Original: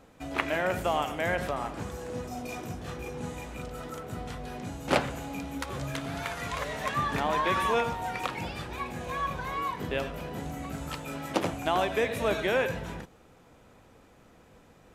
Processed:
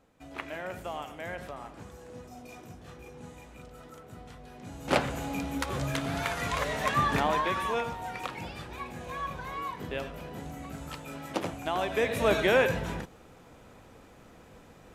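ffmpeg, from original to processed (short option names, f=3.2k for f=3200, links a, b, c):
-af "volume=10.5dB,afade=t=in:st=4.57:d=0.68:silence=0.237137,afade=t=out:st=7.15:d=0.4:silence=0.446684,afade=t=in:st=11.78:d=0.57:silence=0.421697"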